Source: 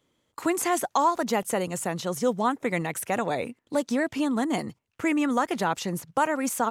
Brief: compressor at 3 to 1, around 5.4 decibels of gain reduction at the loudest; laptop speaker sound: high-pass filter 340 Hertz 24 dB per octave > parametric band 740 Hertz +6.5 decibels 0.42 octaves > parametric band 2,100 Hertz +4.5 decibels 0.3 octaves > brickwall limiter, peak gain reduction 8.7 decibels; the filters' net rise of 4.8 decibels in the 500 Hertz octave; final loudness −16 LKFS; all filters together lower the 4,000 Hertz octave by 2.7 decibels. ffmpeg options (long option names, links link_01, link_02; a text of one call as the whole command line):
ffmpeg -i in.wav -af "equalizer=frequency=500:width_type=o:gain=4,equalizer=frequency=4000:width_type=o:gain=-4,acompressor=threshold=-24dB:ratio=3,highpass=frequency=340:width=0.5412,highpass=frequency=340:width=1.3066,equalizer=frequency=740:width_type=o:width=0.42:gain=6.5,equalizer=frequency=2100:width_type=o:width=0.3:gain=4.5,volume=15dB,alimiter=limit=-5dB:level=0:latency=1" out.wav